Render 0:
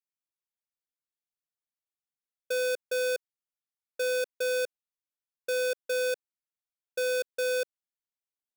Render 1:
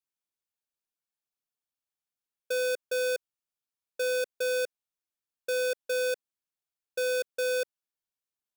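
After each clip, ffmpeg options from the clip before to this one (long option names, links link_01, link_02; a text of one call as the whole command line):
ffmpeg -i in.wav -af "bandreject=frequency=2000:width=11" out.wav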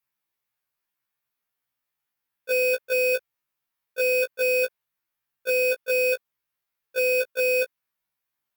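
ffmpeg -i in.wav -af "equalizer=frequency=125:width_type=o:width=1:gain=6,equalizer=frequency=1000:width_type=o:width=1:gain=5,equalizer=frequency=2000:width_type=o:width=1:gain=7,equalizer=frequency=8000:width_type=o:width=1:gain=-7,equalizer=frequency=16000:width_type=o:width=1:gain=8,afftfilt=real='re*1.73*eq(mod(b,3),0)':imag='im*1.73*eq(mod(b,3),0)':win_size=2048:overlap=0.75,volume=7dB" out.wav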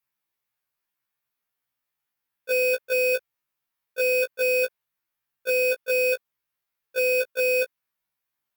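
ffmpeg -i in.wav -af anull out.wav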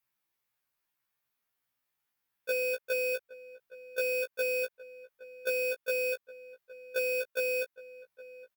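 ffmpeg -i in.wav -filter_complex "[0:a]acompressor=threshold=-30dB:ratio=4,asplit=2[link_01][link_02];[link_02]adelay=816.3,volume=-17dB,highshelf=frequency=4000:gain=-18.4[link_03];[link_01][link_03]amix=inputs=2:normalize=0" out.wav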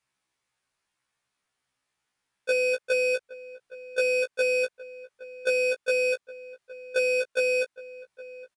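ffmpeg -i in.wav -af "aresample=22050,aresample=44100,volume=6.5dB" out.wav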